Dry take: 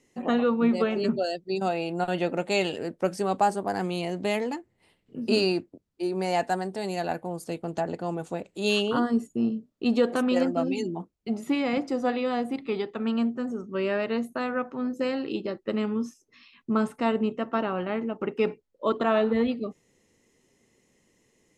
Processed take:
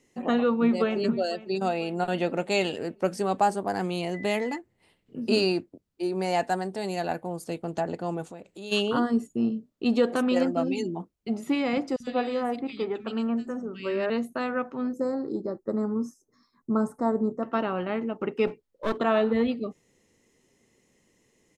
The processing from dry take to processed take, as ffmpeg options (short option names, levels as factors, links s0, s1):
-filter_complex "[0:a]asplit=2[s0][s1];[s1]afade=t=in:st=0.6:d=0.01,afade=t=out:st=1.08:d=0.01,aecho=0:1:500|1000|1500|2000|2500:0.125893|0.0755355|0.0453213|0.0271928|0.0163157[s2];[s0][s2]amix=inputs=2:normalize=0,asettb=1/sr,asplit=3[s3][s4][s5];[s3]atrim=end=4.144[s6];[s4]atrim=start=4.14:end=4.58,asetpts=PTS-STARTPTS,afade=t=in:d=0.004:c=qsin,afade=t=out:st=0.436:d=0.004:c=qsin,aeval=exprs='val(0)+0.01*sin(2*PI*2000*n/s)':c=same[s7];[s5]atrim=start=4.576[s8];[s6][s7]acrossfade=d=0.004:c1=hsin:c2=qsin[s9];[s9][s8]acrossfade=d=0.004:c1=qsin:c2=hsin,asplit=3[s10][s11][s12];[s10]afade=t=out:st=8.29:d=0.02[s13];[s11]acompressor=threshold=0.00794:ratio=2.5:attack=3.2:release=140:knee=1:detection=peak,afade=t=in:st=8.29:d=0.02,afade=t=out:st=8.71:d=0.02[s14];[s12]afade=t=in:st=8.71:d=0.02[s15];[s13][s14][s15]amix=inputs=3:normalize=0,asettb=1/sr,asplit=3[s16][s17][s18];[s16]atrim=end=11.964[s19];[s17]atrim=start=11.96:end=14.1,asetpts=PTS-STARTPTS,afade=t=in:d=0.004:c=qsin,afade=t=out:st=2.136:d=0.004:c=qsin,acrossover=split=180|2200[s20][s21][s22];[s20]adelay=40[s23];[s21]adelay=110[s24];[s23][s24][s22]amix=inputs=3:normalize=0,atrim=end_sample=94374[s25];[s18]atrim=start=14.096[s26];[s19][s25]acrossfade=d=0.004:c1=hsin:c2=qsin[s27];[s27][s26]acrossfade=d=0.004:c1=qsin:c2=hsin,asettb=1/sr,asplit=3[s28][s29][s30];[s28]atrim=end=14.934[s31];[s29]atrim=start=14.93:end=17.43,asetpts=PTS-STARTPTS,afade=t=in:d=0.004:c=qsin,afade=t=out:st=2.496:d=0.004:c=qsin,asuperstop=centerf=2800:order=4:qfactor=0.58[s32];[s30]atrim=start=17.426[s33];[s31][s32]acrossfade=d=0.004:c1=hsin:c2=qsin[s34];[s34][s33]acrossfade=d=0.004:c1=qsin:c2=hsin,asettb=1/sr,asplit=3[s35][s36][s37];[s35]atrim=end=18.474[s38];[s36]atrim=start=18.47:end=18.99,asetpts=PTS-STARTPTS,afade=t=in:d=0.004:c=qsin,afade=t=out:st=0.516:d=0.004:c=qsin,aeval=exprs='clip(val(0),-1,0.02)':c=same[s39];[s37]atrim=start=18.986[s40];[s38][s39]acrossfade=d=0.004:c1=hsin:c2=qsin[s41];[s41][s40]acrossfade=d=0.004:c1=qsin:c2=hsin"